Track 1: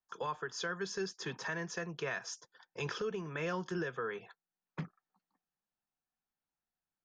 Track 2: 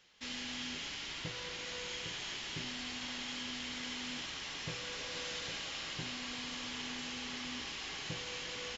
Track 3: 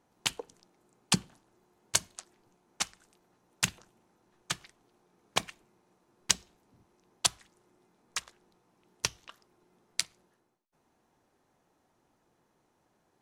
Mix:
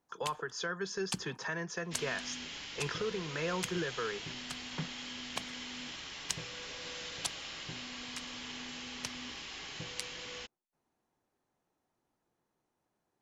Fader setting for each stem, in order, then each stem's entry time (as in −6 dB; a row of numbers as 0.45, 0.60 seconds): +1.0, −2.0, −10.5 decibels; 0.00, 1.70, 0.00 seconds